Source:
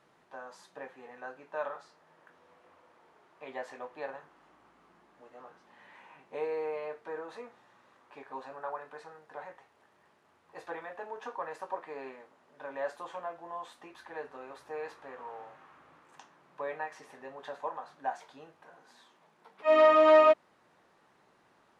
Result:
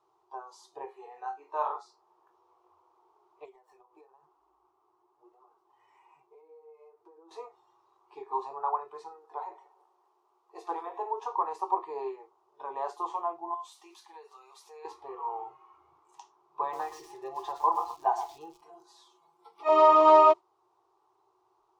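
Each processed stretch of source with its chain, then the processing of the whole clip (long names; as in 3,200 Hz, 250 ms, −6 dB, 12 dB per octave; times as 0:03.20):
0:00.85–0:01.72: high-pass filter 300 Hz 6 dB per octave + flutter between parallel walls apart 4.2 metres, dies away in 0.24 s
0:03.45–0:07.31: running median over 9 samples + downward compressor 12 to 1, threshold −49 dBFS + flanger 1 Hz, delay 2.7 ms, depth 7.7 ms, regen −24%
0:09.09–0:11.11: high-pass filter 220 Hz + echo with a time of its own for lows and highs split 1,400 Hz, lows 146 ms, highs 93 ms, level −11 dB
0:13.54–0:14.85: high-pass filter 740 Hz 6 dB per octave + high-shelf EQ 2,700 Hz +9.5 dB + downward compressor 2 to 1, threshold −52 dBFS
0:16.61–0:19.69: comb filter 5.9 ms, depth 91% + feedback echo at a low word length 120 ms, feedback 35%, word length 8 bits, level −8 dB
whole clip: noise reduction from a noise print of the clip's start 12 dB; drawn EQ curve 120 Hz 0 dB, 230 Hz −27 dB, 370 Hz +15 dB, 550 Hz −7 dB, 780 Hz +11 dB, 1,100 Hz +11 dB, 1,700 Hz −13 dB, 2,500 Hz −5 dB, 5,700 Hz +4 dB, 9,500 Hz −1 dB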